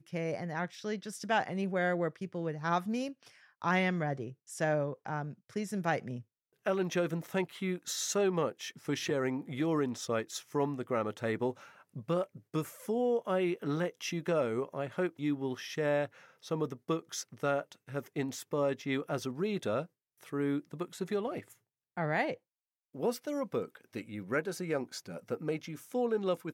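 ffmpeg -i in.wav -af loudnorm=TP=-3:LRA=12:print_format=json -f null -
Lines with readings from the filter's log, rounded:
"input_i" : "-34.7",
"input_tp" : "-15.0",
"input_lra" : "3.4",
"input_thresh" : "-45.0",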